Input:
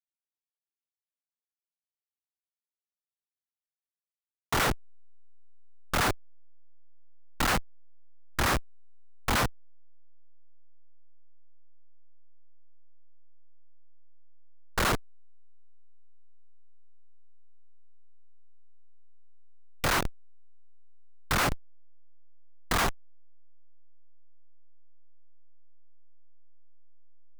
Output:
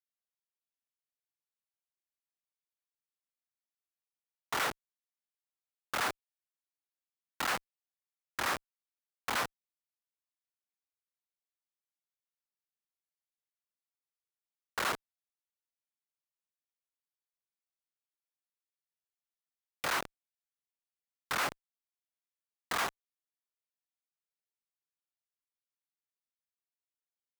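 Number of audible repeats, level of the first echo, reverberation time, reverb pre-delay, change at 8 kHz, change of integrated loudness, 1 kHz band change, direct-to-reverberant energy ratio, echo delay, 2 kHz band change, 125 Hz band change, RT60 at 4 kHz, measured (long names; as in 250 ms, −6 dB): no echo audible, no echo audible, no reverb audible, no reverb audible, −6.5 dB, −6.0 dB, −5.5 dB, no reverb audible, no echo audible, −4.5 dB, −19.0 dB, no reverb audible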